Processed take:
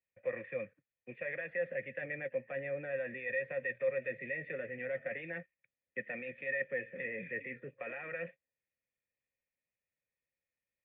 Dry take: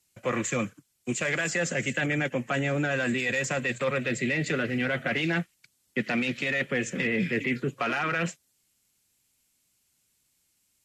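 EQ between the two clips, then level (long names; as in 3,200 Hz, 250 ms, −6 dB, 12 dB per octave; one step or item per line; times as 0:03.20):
formant resonators in series e
parametric band 350 Hz −6.5 dB 1.6 octaves
+1.0 dB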